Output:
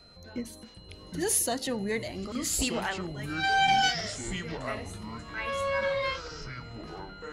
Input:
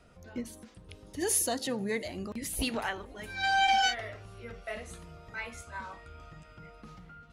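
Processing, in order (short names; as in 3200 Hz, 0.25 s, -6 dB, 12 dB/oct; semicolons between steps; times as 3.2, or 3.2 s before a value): whine 4100 Hz -56 dBFS; echoes that change speed 0.617 s, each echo -6 st, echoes 2, each echo -6 dB; gain +1.5 dB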